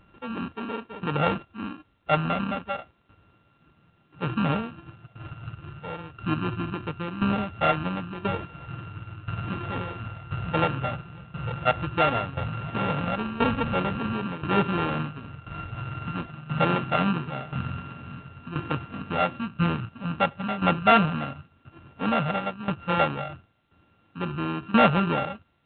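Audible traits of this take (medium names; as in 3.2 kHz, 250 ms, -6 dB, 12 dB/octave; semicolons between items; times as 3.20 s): a buzz of ramps at a fixed pitch in blocks of 32 samples; tremolo saw down 0.97 Hz, depth 80%; A-law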